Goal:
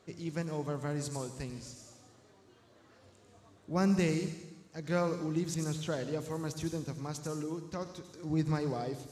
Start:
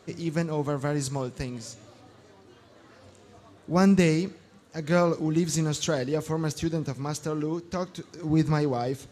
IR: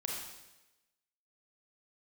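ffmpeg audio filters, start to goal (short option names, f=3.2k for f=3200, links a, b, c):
-filter_complex "[0:a]asettb=1/sr,asplit=3[a][b][c];[a]atrim=end=5.544[d];[b]atrim=start=5.54:end=6.11,asetpts=PTS-STARTPTS,afade=t=in:d=0.004:c=qsin,afade=t=out:st=0.566:d=0.004:c=qsin,acrossover=split=3700[e][f];[f]acompressor=threshold=-46dB:ratio=4:attack=1:release=60[g];[e][g]amix=inputs=2:normalize=0[h];[c]atrim=start=6.106[i];[d][h]acrossfade=d=0.004:c1=hsin:c2=qsin[j];[j][i]acrossfade=d=0.004:c1=qsin:c2=hsin,asplit=2[k][l];[l]bass=f=250:g=6,treble=f=4k:g=12[m];[1:a]atrim=start_sample=2205,adelay=96[n];[m][n]afir=irnorm=-1:irlink=0,volume=-14dB[o];[k][o]amix=inputs=2:normalize=0,volume=-8.5dB"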